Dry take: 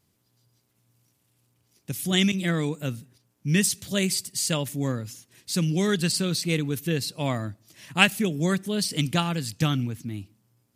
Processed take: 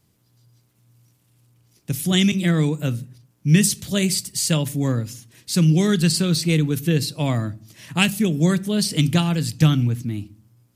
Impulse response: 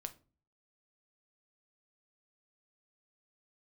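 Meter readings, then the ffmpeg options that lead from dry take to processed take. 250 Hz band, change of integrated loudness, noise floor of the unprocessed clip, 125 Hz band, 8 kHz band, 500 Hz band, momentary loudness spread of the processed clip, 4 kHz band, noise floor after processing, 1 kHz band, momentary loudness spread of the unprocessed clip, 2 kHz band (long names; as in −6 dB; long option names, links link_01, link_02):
+6.5 dB, +5.5 dB, −71 dBFS, +8.0 dB, +4.0 dB, +3.0 dB, 12 LU, +3.0 dB, −63 dBFS, 0.0 dB, 13 LU, 0.0 dB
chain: -filter_complex "[0:a]acrossover=split=360|3000[link_01][link_02][link_03];[link_02]acompressor=threshold=-30dB:ratio=3[link_04];[link_01][link_04][link_03]amix=inputs=3:normalize=0,asplit=2[link_05][link_06];[1:a]atrim=start_sample=2205,lowshelf=frequency=300:gain=9[link_07];[link_06][link_07]afir=irnorm=-1:irlink=0,volume=-1dB[link_08];[link_05][link_08]amix=inputs=2:normalize=0"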